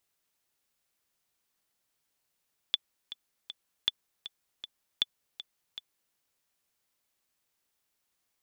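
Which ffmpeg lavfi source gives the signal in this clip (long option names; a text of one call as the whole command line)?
ffmpeg -f lavfi -i "aevalsrc='pow(10,(-12-14.5*gte(mod(t,3*60/158),60/158))/20)*sin(2*PI*3470*mod(t,60/158))*exp(-6.91*mod(t,60/158)/0.03)':duration=3.41:sample_rate=44100" out.wav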